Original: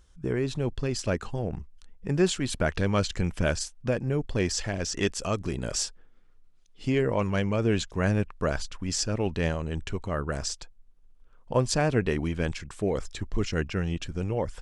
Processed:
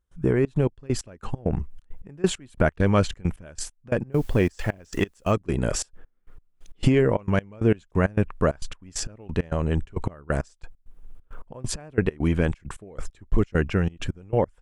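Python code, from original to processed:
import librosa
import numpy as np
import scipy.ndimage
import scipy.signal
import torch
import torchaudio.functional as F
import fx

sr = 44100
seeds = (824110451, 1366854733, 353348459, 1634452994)

y = fx.recorder_agc(x, sr, target_db=-16.5, rise_db_per_s=14.0, max_gain_db=30)
y = fx.peak_eq(y, sr, hz=5000.0, db=-10.5, octaves=1.4)
y = fx.quant_dither(y, sr, seeds[0], bits=10, dither='triangular', at=(4.12, 5.32))
y = fx.step_gate(y, sr, bpm=134, pattern='.xxx.x..x..x', floor_db=-24.0, edge_ms=4.5)
y = F.gain(torch.from_numpy(y), 5.5).numpy()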